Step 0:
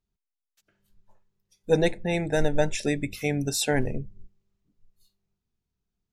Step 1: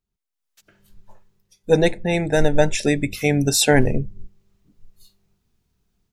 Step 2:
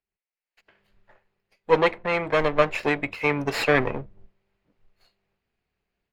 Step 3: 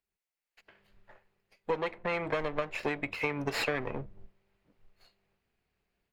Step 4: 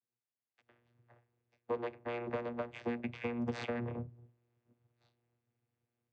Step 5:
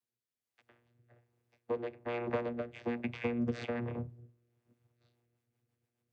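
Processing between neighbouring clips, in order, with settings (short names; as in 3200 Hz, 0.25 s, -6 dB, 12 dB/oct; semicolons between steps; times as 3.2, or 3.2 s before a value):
AGC gain up to 14.5 dB; gain -1 dB
minimum comb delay 0.43 ms; three-band isolator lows -16 dB, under 440 Hz, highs -24 dB, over 3400 Hz; gain +2.5 dB
compressor 10:1, threshold -28 dBFS, peak gain reduction 16.5 dB
vocoder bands 16, saw 119 Hz; gain -4 dB
rotary speaker horn 1.2 Hz, later 7.5 Hz, at 4.77; gain +4 dB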